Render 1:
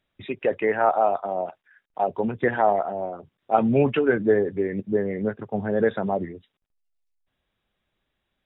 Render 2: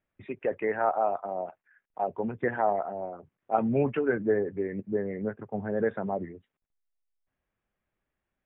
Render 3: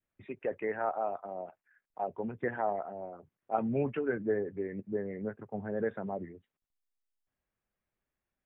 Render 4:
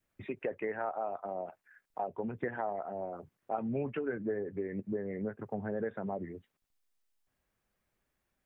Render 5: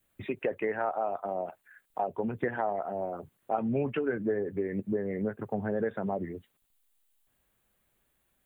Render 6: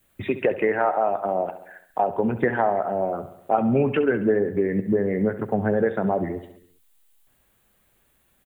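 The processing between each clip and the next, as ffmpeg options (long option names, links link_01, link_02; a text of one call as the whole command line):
ffmpeg -i in.wav -af "lowpass=frequency=2400:width=0.5412,lowpass=frequency=2400:width=1.3066,volume=-6dB" out.wav
ffmpeg -i in.wav -af "adynamicequalizer=threshold=0.0158:dfrequency=900:dqfactor=1.1:tfrequency=900:tqfactor=1.1:attack=5:release=100:ratio=0.375:range=2:mode=cutabove:tftype=bell,volume=-5dB" out.wav
ffmpeg -i in.wav -af "acompressor=threshold=-42dB:ratio=3,volume=7dB" out.wav
ffmpeg -i in.wav -af "aexciter=amount=1.1:drive=5.4:freq=2900,volume=5dB" out.wav
ffmpeg -i in.wav -af "aecho=1:1:68|136|204|272|340|408:0.211|0.123|0.0711|0.0412|0.0239|0.0139,volume=9dB" out.wav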